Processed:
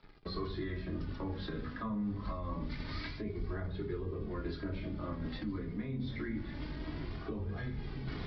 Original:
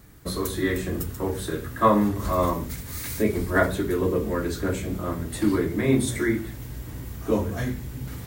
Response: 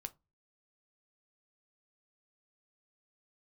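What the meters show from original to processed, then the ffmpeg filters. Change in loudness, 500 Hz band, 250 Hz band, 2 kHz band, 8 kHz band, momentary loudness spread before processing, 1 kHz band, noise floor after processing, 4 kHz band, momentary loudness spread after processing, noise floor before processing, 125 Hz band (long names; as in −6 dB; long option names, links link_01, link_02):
−14.0 dB, −17.5 dB, −13.5 dB, −15.5 dB, below −40 dB, 11 LU, −18.5 dB, −44 dBFS, −10.0 dB, 3 LU, −38 dBFS, −10.0 dB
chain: -filter_complex "[0:a]aeval=exprs='sgn(val(0))*max(abs(val(0))-0.00376,0)':channel_layout=same,acrossover=split=160[link_01][link_02];[link_02]acompressor=threshold=-36dB:ratio=10[link_03];[link_01][link_03]amix=inputs=2:normalize=0[link_04];[1:a]atrim=start_sample=2205,asetrate=66150,aresample=44100[link_05];[link_04][link_05]afir=irnorm=-1:irlink=0,aresample=11025,aresample=44100,areverse,acompressor=threshold=-44dB:ratio=6,areverse,bandreject=frequency=60:width_type=h:width=6,bandreject=frequency=120:width_type=h:width=6,bandreject=frequency=180:width_type=h:width=6,flanger=delay=2.3:depth=1.9:regen=42:speed=0.26:shape=triangular,volume=14.5dB"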